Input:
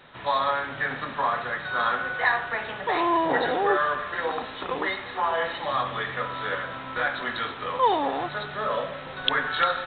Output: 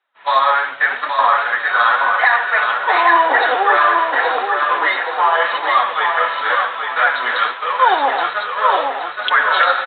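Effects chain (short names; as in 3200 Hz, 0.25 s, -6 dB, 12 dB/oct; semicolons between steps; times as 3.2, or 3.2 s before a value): HPF 830 Hz 12 dB/oct; expander -32 dBFS; high shelf 3900 Hz -7 dB; flange 0.88 Hz, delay 2.3 ms, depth 7.7 ms, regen +31%; air absorption 72 m; feedback echo 0.823 s, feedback 37%, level -5 dB; maximiser +19 dB; gain -1.5 dB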